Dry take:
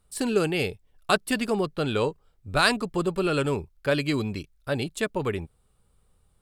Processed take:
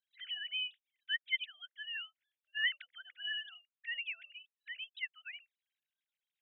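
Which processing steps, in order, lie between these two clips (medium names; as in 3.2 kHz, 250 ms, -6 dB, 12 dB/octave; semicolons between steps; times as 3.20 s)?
formants replaced by sine waves; frequency shift +330 Hz; inverse Chebyshev band-stop 400–1100 Hz, stop band 50 dB; trim -3.5 dB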